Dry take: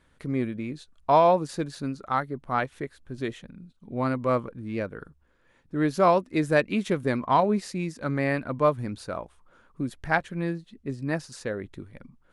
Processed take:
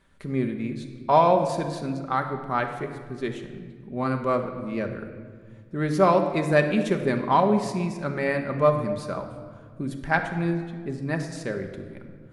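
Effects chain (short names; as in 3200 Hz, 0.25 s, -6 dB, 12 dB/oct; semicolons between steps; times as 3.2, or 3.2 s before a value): shoebox room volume 2500 m³, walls mixed, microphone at 1.2 m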